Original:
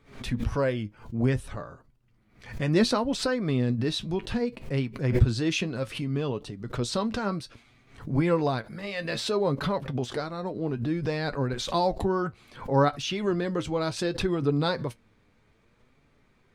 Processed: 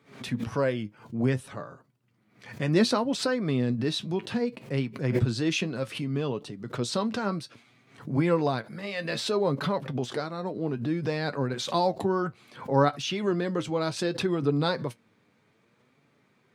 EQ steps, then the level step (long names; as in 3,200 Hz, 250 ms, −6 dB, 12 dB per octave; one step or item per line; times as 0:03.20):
high-pass filter 120 Hz 24 dB per octave
0.0 dB